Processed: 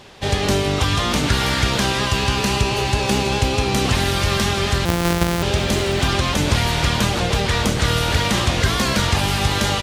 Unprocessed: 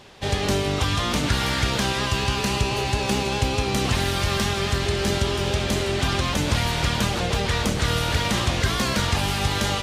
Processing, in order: 4.85–5.43 s: sorted samples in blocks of 256 samples; delay 696 ms -15.5 dB; trim +4 dB

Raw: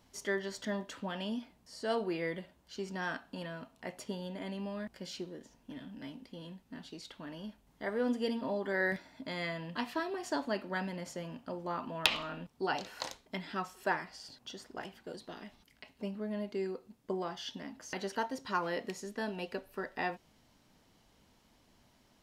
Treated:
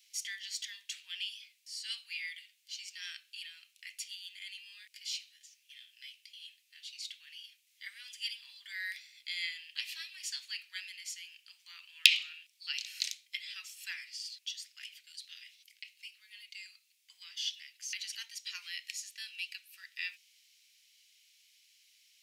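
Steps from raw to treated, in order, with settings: elliptic high-pass 2.3 kHz, stop band 80 dB; trim +8 dB

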